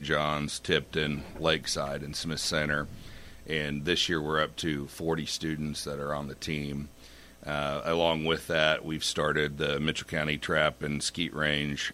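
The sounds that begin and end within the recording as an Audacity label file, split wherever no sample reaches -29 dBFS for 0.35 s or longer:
3.500000	6.810000	sound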